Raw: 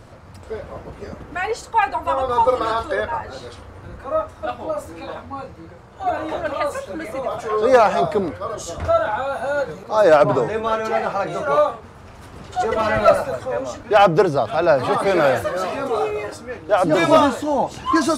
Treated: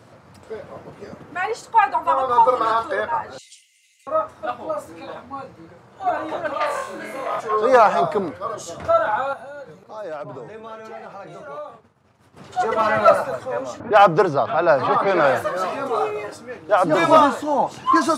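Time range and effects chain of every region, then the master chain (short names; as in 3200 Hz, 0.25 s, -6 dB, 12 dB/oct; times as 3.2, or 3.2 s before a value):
3.38–4.07 rippled Chebyshev high-pass 2000 Hz, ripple 9 dB + high shelf 2900 Hz +11.5 dB
6.58–7.4 low shelf 260 Hz -6.5 dB + flutter echo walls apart 4 m, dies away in 0.61 s + core saturation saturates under 1600 Hz
9.33–12.37 expander -32 dBFS + low shelf 110 Hz +7 dB + compressor 2:1, threshold -40 dBFS
13.8–15.29 low-pass opened by the level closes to 1100 Hz, open at -9 dBFS + upward compressor, threshold -17 dBFS
whole clip: HPF 110 Hz 24 dB/oct; dynamic EQ 1100 Hz, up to +7 dB, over -31 dBFS, Q 1.3; gain -3 dB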